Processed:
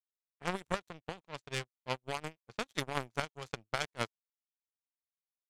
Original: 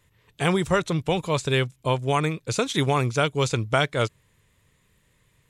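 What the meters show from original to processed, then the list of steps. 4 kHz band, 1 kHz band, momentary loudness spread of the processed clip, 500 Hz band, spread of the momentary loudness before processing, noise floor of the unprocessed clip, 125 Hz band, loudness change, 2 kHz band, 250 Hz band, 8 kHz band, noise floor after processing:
-13.0 dB, -13.5 dB, 9 LU, -17.0 dB, 4 LU, -66 dBFS, -20.5 dB, -15.0 dB, -11.5 dB, -18.0 dB, -13.5 dB, under -85 dBFS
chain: tremolo 5.7 Hz, depth 29%; power-law waveshaper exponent 3; level-controlled noise filter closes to 2.3 kHz, open at -35.5 dBFS; trim -2 dB

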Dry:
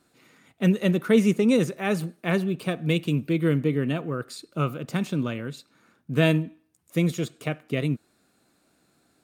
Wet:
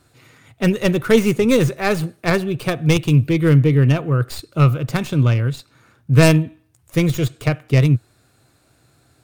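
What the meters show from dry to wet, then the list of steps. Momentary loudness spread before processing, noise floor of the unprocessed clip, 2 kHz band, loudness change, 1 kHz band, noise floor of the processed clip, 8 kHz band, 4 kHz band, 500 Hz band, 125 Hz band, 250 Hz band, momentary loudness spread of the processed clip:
12 LU, -67 dBFS, +7.5 dB, +8.0 dB, +8.5 dB, -59 dBFS, +10.5 dB, +7.0 dB, +7.0 dB, +11.5 dB, +5.0 dB, 8 LU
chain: tracing distortion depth 0.15 ms; resonant low shelf 150 Hz +7.5 dB, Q 3; trim +7.5 dB

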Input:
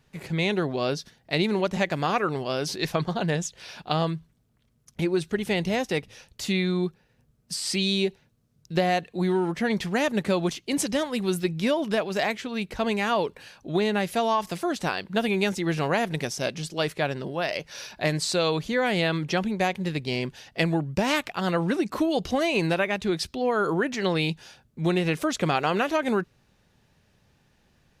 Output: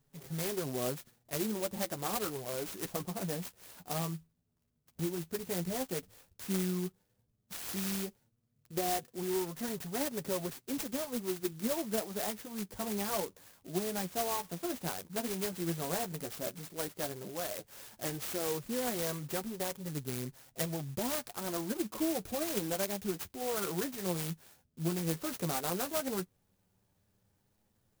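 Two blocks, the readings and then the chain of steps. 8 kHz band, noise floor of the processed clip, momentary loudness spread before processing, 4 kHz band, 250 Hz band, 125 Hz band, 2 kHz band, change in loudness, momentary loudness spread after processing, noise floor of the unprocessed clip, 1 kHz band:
-2.0 dB, -76 dBFS, 6 LU, -12.0 dB, -10.5 dB, -11.0 dB, -16.0 dB, -10.0 dB, 7 LU, -66 dBFS, -12.0 dB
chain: flange 0.1 Hz, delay 7.1 ms, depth 5.1 ms, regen +18%; sampling jitter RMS 0.13 ms; trim -7 dB

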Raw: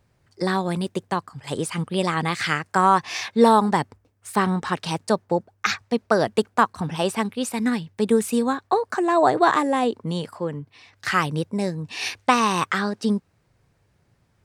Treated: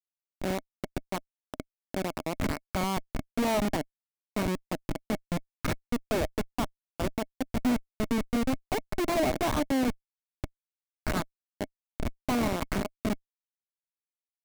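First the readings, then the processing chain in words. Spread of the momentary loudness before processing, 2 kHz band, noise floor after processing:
10 LU, -11.5 dB, under -85 dBFS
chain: Schmitt trigger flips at -18.5 dBFS; small resonant body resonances 270/620/2200 Hz, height 8 dB, ringing for 35 ms; trim -5.5 dB

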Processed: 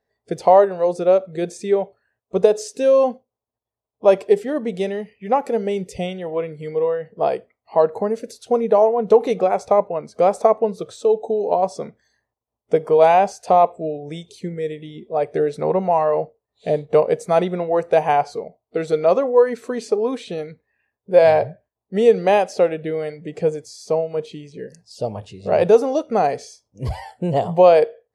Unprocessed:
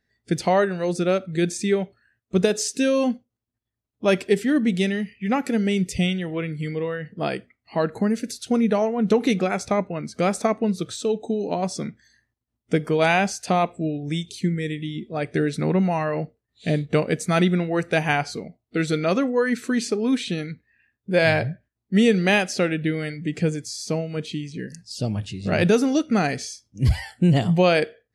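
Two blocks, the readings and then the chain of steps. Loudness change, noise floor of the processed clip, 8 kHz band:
+4.0 dB, -85 dBFS, no reading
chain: high-order bell 670 Hz +15.5 dB; trim -7 dB

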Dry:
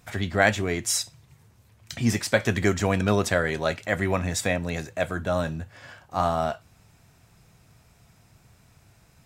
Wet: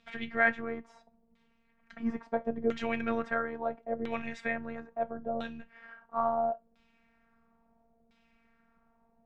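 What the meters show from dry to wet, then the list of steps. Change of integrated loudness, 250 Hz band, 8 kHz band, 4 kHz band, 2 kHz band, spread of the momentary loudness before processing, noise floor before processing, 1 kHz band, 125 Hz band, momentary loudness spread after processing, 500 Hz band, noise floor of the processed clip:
-8.0 dB, -8.0 dB, under -30 dB, -18.0 dB, -6.5 dB, 11 LU, -59 dBFS, -5.0 dB, -22.5 dB, 13 LU, -7.5 dB, -70 dBFS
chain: robot voice 230 Hz; LFO low-pass saw down 0.74 Hz 500–3500 Hz; trim -8 dB

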